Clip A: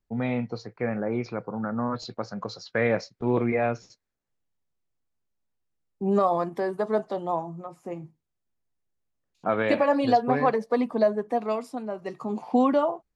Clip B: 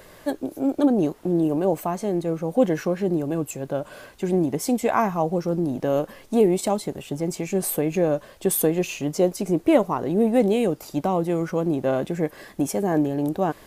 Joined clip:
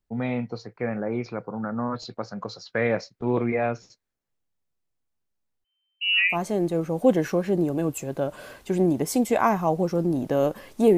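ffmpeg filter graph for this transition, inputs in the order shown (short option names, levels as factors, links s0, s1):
-filter_complex "[0:a]asettb=1/sr,asplit=3[s0][s1][s2];[s0]atrim=end=5.644[s3];[s1]atrim=start=5.64:end=6.37,asetpts=PTS-STARTPTS,afade=t=in:d=0.004:c=qsin,afade=t=out:st=0.726:d=0.004:c=qsin,lowpass=f=2600:t=q:w=0.5098,lowpass=f=2600:t=q:w=0.6013,lowpass=f=2600:t=q:w=0.9,lowpass=f=2600:t=q:w=2.563,afreqshift=-3100[s4];[s2]atrim=start=6.366[s5];[s3][s4]acrossfade=d=0.004:c1=hsin:c2=qsin[s6];[s6][s5]acrossfade=d=0.004:c1=qsin:c2=hsin,apad=whole_dur=10.97,atrim=end=10.97,atrim=end=6.37,asetpts=PTS-STARTPTS[s7];[1:a]atrim=start=1.82:end=6.5,asetpts=PTS-STARTPTS[s8];[s7][s8]acrossfade=d=0.08:c1=tri:c2=tri"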